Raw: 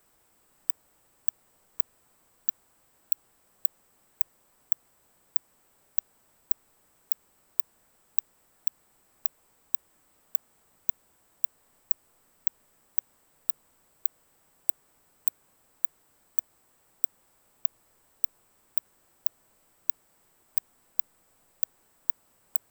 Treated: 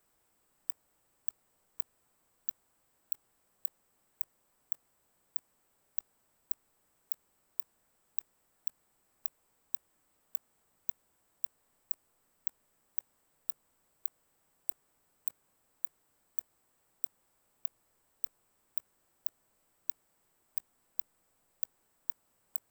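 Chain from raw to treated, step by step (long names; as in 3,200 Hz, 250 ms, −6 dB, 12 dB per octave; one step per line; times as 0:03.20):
output level in coarse steps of 21 dB
level +10 dB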